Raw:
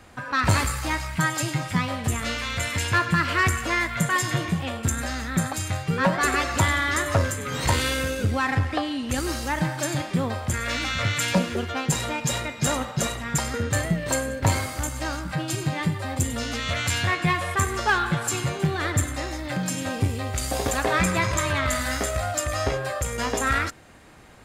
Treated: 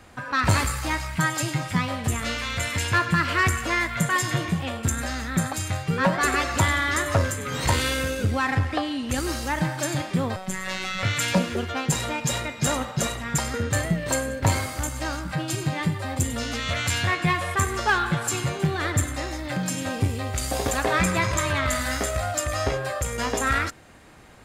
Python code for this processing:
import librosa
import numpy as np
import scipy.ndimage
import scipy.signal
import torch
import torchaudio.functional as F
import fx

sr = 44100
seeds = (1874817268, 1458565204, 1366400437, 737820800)

y = fx.robotise(x, sr, hz=188.0, at=(10.36, 11.03))